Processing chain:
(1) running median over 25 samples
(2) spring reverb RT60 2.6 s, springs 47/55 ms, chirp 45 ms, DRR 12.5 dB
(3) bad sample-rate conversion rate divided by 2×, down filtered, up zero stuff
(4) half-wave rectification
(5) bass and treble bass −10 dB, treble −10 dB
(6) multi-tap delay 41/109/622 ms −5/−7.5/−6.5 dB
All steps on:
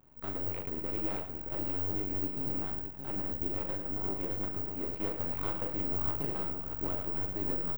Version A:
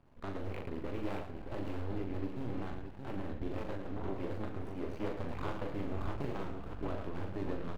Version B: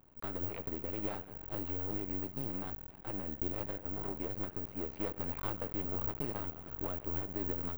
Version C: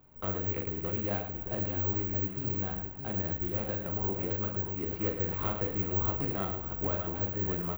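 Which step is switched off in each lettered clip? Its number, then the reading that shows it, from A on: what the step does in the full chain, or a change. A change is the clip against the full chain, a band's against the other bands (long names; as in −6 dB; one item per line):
3, change in integrated loudness −7.0 LU
6, change in crest factor +2.5 dB
4, 125 Hz band +3.5 dB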